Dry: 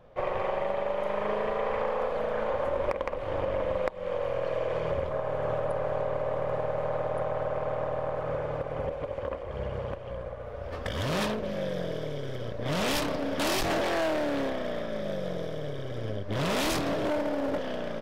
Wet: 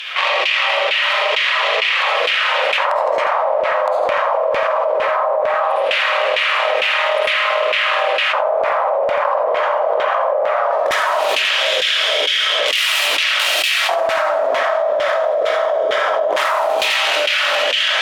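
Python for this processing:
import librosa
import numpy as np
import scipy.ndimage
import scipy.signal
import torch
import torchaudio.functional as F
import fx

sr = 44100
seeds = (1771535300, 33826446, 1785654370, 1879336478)

y = fx.tracing_dist(x, sr, depth_ms=0.45)
y = fx.filter_lfo_highpass(y, sr, shape='square', hz=0.18, low_hz=870.0, high_hz=2900.0, q=2.3)
y = scipy.signal.sosfilt(scipy.signal.butter(2, 210.0, 'highpass', fs=sr, output='sos'), y)
y = fx.high_shelf(y, sr, hz=6900.0, db=11.0)
y = fx.rev_freeverb(y, sr, rt60_s=0.67, hf_ratio=0.45, predelay_ms=30, drr_db=-5.5)
y = fx.dynamic_eq(y, sr, hz=630.0, q=6.0, threshold_db=-42.0, ratio=4.0, max_db=4)
y = fx.filter_lfo_bandpass(y, sr, shape='saw_down', hz=2.2, low_hz=370.0, high_hz=2600.0, q=1.5)
y = y + 10.0 ** (-10.5 / 20.0) * np.pad(y, (int(85 * sr / 1000.0), 0))[:len(y)]
y = fx.env_flatten(y, sr, amount_pct=100)
y = y * librosa.db_to_amplitude(2.5)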